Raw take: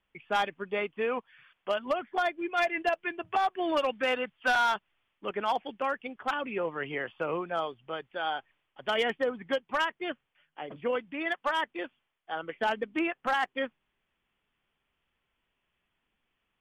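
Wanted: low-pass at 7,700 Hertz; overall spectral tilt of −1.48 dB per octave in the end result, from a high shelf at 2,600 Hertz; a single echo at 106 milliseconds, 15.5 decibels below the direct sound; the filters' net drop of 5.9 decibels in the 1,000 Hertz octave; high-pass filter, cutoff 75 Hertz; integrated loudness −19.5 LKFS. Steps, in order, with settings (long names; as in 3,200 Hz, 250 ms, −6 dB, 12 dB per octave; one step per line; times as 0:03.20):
high-pass filter 75 Hz
low-pass filter 7,700 Hz
parametric band 1,000 Hz −8 dB
high-shelf EQ 2,600 Hz −4 dB
single-tap delay 106 ms −15.5 dB
level +15 dB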